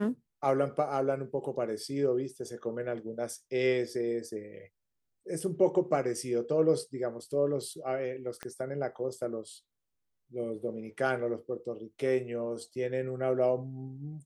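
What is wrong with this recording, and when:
8.43 pop -23 dBFS

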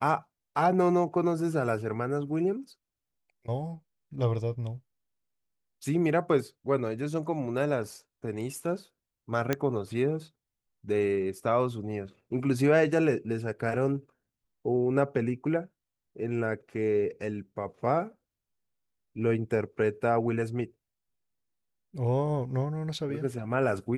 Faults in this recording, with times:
9.53 pop -12 dBFS

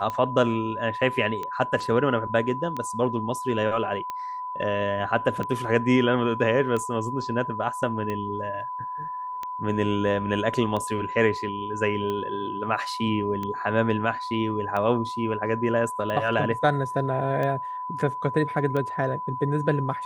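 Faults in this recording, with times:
tick 45 rpm -18 dBFS
tone 1000 Hz -30 dBFS

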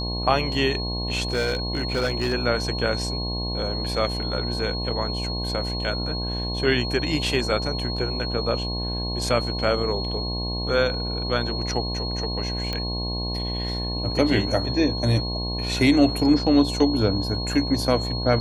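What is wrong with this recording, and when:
buzz 60 Hz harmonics 18 -29 dBFS
tone 4300 Hz -30 dBFS
1.32–2.34 clipped -18.5 dBFS
12.73 pop -14 dBFS

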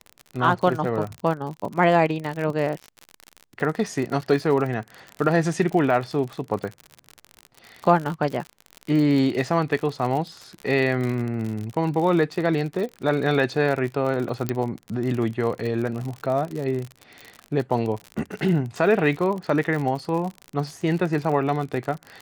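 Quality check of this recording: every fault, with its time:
crackle 53/s -28 dBFS
14.49 pop -10 dBFS

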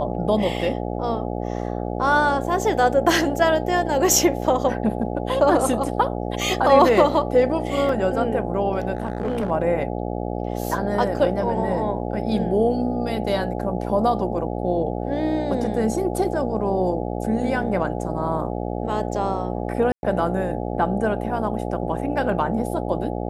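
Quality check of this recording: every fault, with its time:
buzz 60 Hz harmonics 14 -27 dBFS
7.89 gap 2.9 ms
8.95–9.51 clipped -19 dBFS
19.92–20.03 gap 0.111 s

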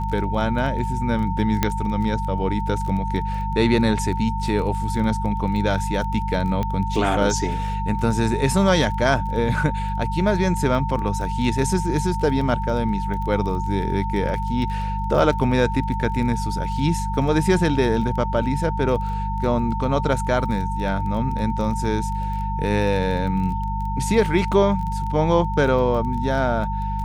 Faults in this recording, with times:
crackle 17/s -29 dBFS
hum 50 Hz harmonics 4 -26 dBFS
tone 900 Hz -27 dBFS
1.63 pop -4 dBFS
6.63 pop -13 dBFS

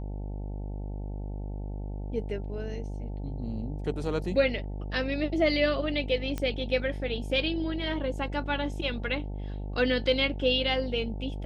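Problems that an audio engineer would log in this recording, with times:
buzz 50 Hz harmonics 18 -35 dBFS
6.38 pop -18 dBFS

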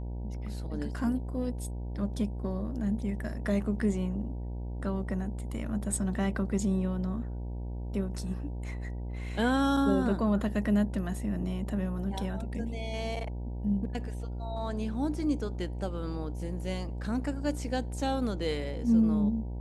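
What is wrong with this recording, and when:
buzz 60 Hz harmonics 16 -36 dBFS

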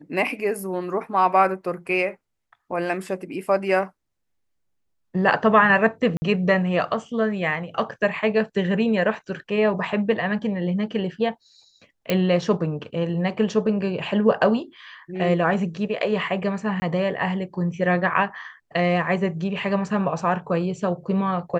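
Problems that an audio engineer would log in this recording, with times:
6.17–6.22 gap 50 ms
12.1 pop -8 dBFS
16.8–16.82 gap 20 ms

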